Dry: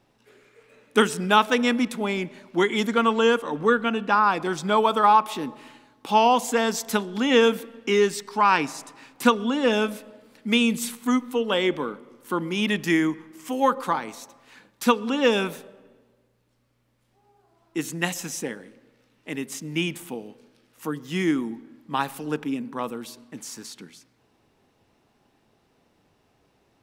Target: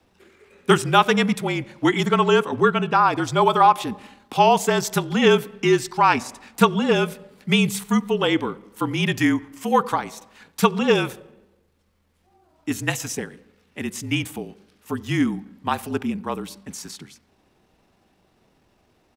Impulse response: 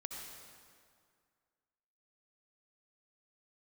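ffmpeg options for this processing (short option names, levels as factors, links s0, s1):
-af "adynamicequalizer=threshold=0.0126:dfrequency=200:dqfactor=6.3:tfrequency=200:tqfactor=6.3:attack=5:release=100:ratio=0.375:range=1.5:mode=cutabove:tftype=bell,atempo=1.4,afreqshift=-40,volume=1.41"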